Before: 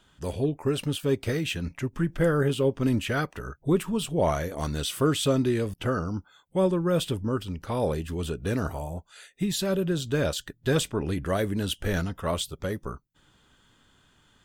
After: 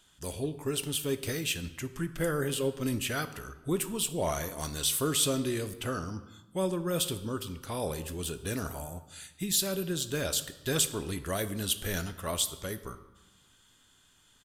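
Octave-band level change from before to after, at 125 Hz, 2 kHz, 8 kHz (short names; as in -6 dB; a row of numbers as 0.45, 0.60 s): -7.5, -3.5, +6.5 dB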